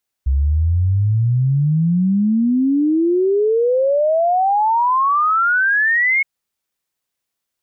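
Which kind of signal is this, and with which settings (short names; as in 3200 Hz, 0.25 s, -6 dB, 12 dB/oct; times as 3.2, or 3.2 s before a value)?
log sweep 65 Hz -> 2200 Hz 5.97 s -12.5 dBFS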